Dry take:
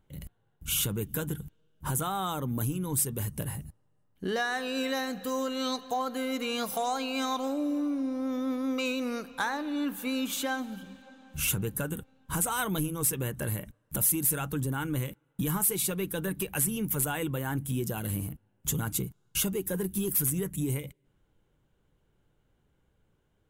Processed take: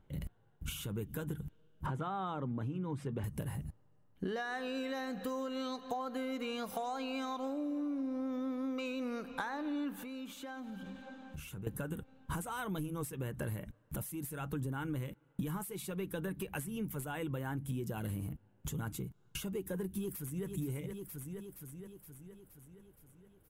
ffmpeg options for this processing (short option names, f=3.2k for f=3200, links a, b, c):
-filter_complex "[0:a]asettb=1/sr,asplit=3[a][b][c];[a]atrim=end=1.864[d];[b]atrim=start=1.86:end=3.24,asetpts=PTS-STARTPTS,afade=t=in:d=0.004:c=qsin,afade=t=out:st=1.376:d=0.004:c=qsin,highpass=100,lowpass=2.9k[e];[c]atrim=start=3.236[f];[d][e]acrossfade=d=0.004:c1=hsin:c2=qsin[g];[g][f]acrossfade=d=0.004:c1=qsin:c2=hsin,asettb=1/sr,asplit=3[h][i][j];[h]atrim=end=10.034[k];[i]atrim=start=10.03:end=11.67,asetpts=PTS-STARTPTS,afade=t=in:d=0.004:c=qsin,afade=t=out:st=1.636:d=0.004:c=qsin,acompressor=threshold=-44dB:ratio=8:attack=3.2:release=140:knee=1:detection=peak[l];[j]atrim=start=11.666[m];[k][l]acrossfade=d=0.004:c1=hsin:c2=qsin[n];[n][m]acrossfade=d=0.004:c1=qsin:c2=hsin,asplit=2[o][p];[p]afade=t=in:st=19.97:d=0.01,afade=t=out:st=20.46:d=0.01,aecho=0:1:470|940|1410|1880|2350|2820|3290:0.266073|0.159644|0.0957861|0.0574717|0.034483|0.0206898|0.0124139[q];[o][q]amix=inputs=2:normalize=0,acompressor=threshold=-37dB:ratio=12,highshelf=f=3.8k:g=-10.5,volume=3dB"